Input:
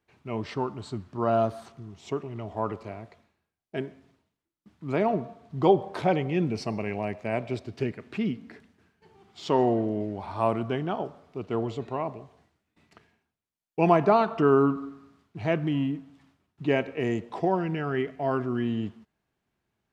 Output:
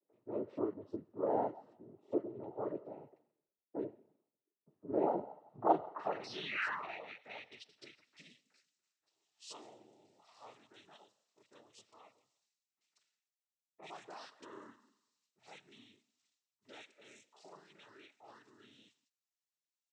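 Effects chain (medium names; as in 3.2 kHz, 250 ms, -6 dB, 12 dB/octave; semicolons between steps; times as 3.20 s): painted sound fall, 6.19–7.04 s, 540–5000 Hz -30 dBFS; band-pass sweep 430 Hz -> 5.9 kHz, 4.90–8.28 s; noise-vocoded speech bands 12; bands offset in time lows, highs 40 ms, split 1.6 kHz; trim -2.5 dB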